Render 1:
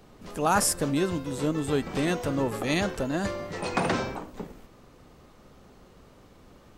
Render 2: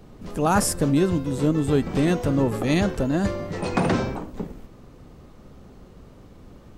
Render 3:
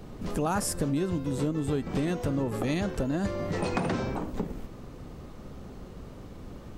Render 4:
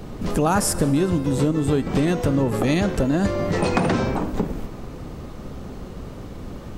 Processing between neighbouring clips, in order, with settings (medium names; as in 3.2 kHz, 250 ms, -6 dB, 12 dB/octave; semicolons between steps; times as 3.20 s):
bass shelf 420 Hz +9.5 dB
compression 4:1, threshold -30 dBFS, peak gain reduction 13 dB; trim +3 dB
reverberation RT60 2.9 s, pre-delay 56 ms, DRR 16.5 dB; trim +8.5 dB